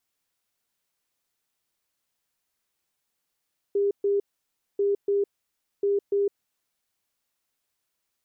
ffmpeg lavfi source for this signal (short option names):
-f lavfi -i "aevalsrc='0.1*sin(2*PI*402*t)*clip(min(mod(mod(t,1.04),0.29),0.16-mod(mod(t,1.04),0.29))/0.005,0,1)*lt(mod(t,1.04),0.58)':d=3.12:s=44100"